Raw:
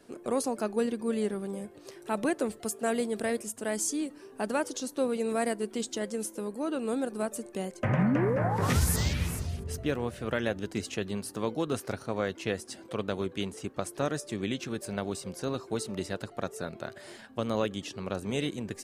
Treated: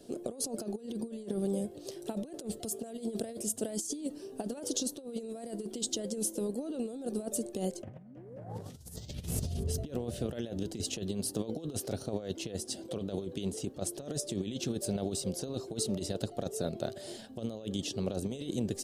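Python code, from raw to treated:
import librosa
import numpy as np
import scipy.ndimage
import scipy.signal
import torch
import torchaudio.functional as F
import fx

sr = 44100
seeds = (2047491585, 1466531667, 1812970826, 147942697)

y = fx.band_shelf(x, sr, hz=1500.0, db=-13.0, octaves=1.7)
y = fx.over_compress(y, sr, threshold_db=-35.0, ratio=-0.5)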